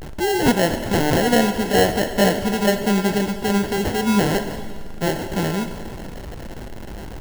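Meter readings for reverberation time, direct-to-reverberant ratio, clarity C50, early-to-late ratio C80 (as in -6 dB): 2.1 s, 7.5 dB, 9.5 dB, 10.5 dB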